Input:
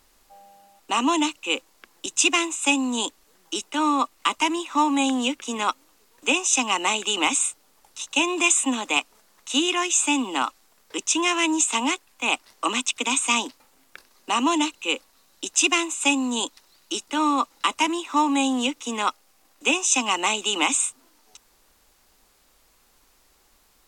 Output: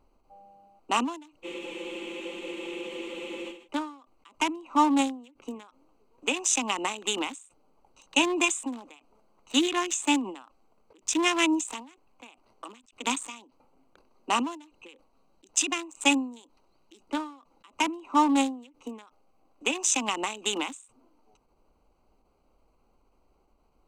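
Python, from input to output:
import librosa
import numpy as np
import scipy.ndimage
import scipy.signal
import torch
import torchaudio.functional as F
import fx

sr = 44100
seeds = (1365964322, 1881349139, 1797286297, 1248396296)

y = fx.wiener(x, sr, points=25)
y = fx.spec_freeze(y, sr, seeds[0], at_s=1.46, hold_s=2.19)
y = fx.end_taper(y, sr, db_per_s=120.0)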